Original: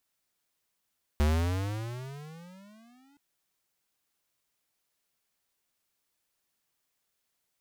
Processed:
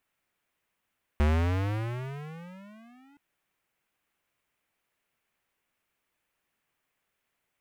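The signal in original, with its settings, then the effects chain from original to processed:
pitch glide with a swell square, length 1.97 s, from 72.6 Hz, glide +24 semitones, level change −39.5 dB, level −23 dB
high shelf with overshoot 3,300 Hz −8.5 dB, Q 1.5
in parallel at −4.5 dB: gain into a clipping stage and back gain 34 dB

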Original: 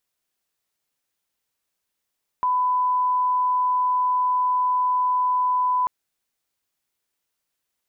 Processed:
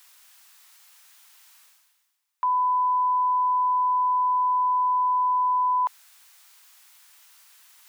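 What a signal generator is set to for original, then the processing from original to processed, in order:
line-up tone −18 dBFS 3.44 s
high-pass filter 860 Hz 24 dB per octave
reversed playback
upward compression, threshold −33 dBFS
reversed playback

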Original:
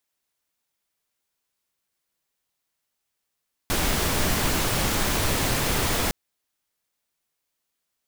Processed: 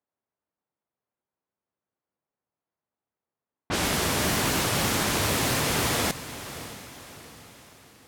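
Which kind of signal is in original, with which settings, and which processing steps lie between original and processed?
noise pink, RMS −23.5 dBFS 2.41 s
high-pass filter 86 Hz 12 dB per octave
low-pass that shuts in the quiet parts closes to 1,000 Hz, open at −21 dBFS
feedback delay with all-pass diffusion 617 ms, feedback 46%, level −13.5 dB

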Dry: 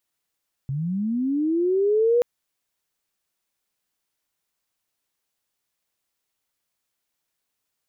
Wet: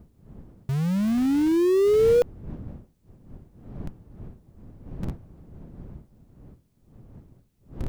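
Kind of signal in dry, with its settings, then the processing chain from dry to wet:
glide linear 130 Hz → 490 Hz −24 dBFS → −15 dBFS 1.53 s
wind on the microphone 170 Hz −41 dBFS
in parallel at −5 dB: comparator with hysteresis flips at −26 dBFS

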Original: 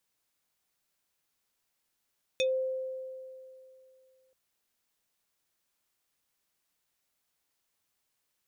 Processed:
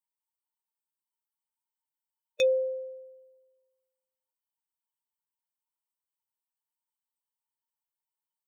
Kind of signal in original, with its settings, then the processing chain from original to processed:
two-operator FM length 1.93 s, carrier 521 Hz, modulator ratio 5.86, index 1.6, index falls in 0.13 s exponential, decay 2.66 s, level −23.5 dB
spectral dynamics exaggerated over time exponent 2
parametric band 1,000 Hz +11.5 dB 2.2 octaves

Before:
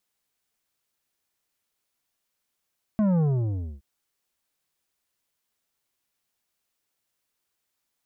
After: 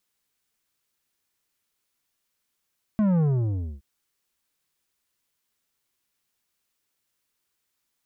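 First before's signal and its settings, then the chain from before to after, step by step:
bass drop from 220 Hz, over 0.82 s, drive 9.5 dB, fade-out 0.61 s, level −20 dB
parametric band 680 Hz −4.5 dB 0.73 octaves
in parallel at −12 dB: soft clipping −28 dBFS

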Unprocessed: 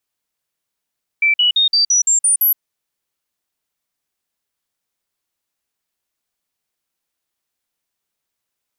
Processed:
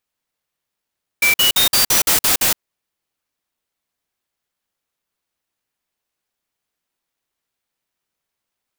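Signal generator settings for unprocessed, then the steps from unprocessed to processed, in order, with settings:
stepped sweep 2,330 Hz up, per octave 3, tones 8, 0.12 s, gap 0.05 s −10.5 dBFS
converter with an unsteady clock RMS 0.041 ms

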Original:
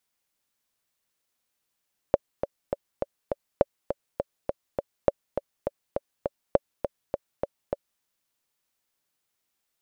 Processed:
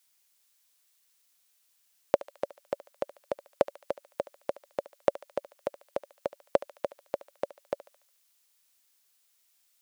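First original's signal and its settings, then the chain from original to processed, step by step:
click track 204 BPM, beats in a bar 5, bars 4, 565 Hz, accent 8.5 dB −4.5 dBFS
high-pass filter 390 Hz 6 dB per octave
high-shelf EQ 2,200 Hz +11 dB
feedback echo with a high-pass in the loop 72 ms, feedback 59%, high-pass 850 Hz, level −14 dB

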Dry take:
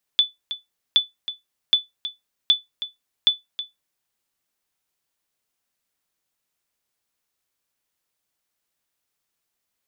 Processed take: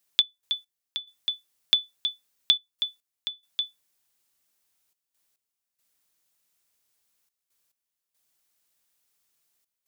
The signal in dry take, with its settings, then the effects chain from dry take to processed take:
ping with an echo 3,480 Hz, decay 0.17 s, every 0.77 s, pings 5, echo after 0.32 s, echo −13 dB −7.5 dBFS
high-shelf EQ 3,900 Hz +7.5 dB
downward compressor 4 to 1, threshold −18 dBFS
gate pattern "x.x..xxxxxx" 70 BPM −12 dB

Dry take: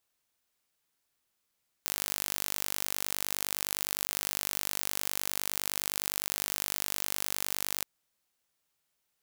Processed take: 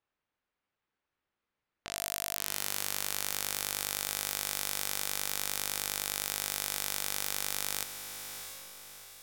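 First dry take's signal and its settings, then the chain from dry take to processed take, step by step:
impulse train 49.8 per second, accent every 0, −5 dBFS 5.97 s
notch filter 680 Hz, Q 15
low-pass that shuts in the quiet parts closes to 2,100 Hz, open at −42.5 dBFS
on a send: feedback delay with all-pass diffusion 695 ms, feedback 45%, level −8 dB

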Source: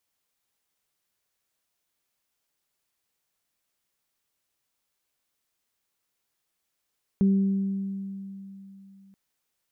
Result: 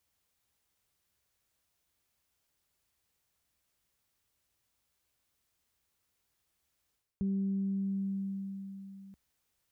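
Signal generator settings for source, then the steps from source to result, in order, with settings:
harmonic partials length 1.93 s, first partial 195 Hz, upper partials −14 dB, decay 3.28 s, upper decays 1.63 s, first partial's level −16.5 dB
parametric band 65 Hz +13 dB 1.8 octaves
reversed playback
downward compressor 6 to 1, threshold −32 dBFS
reversed playback

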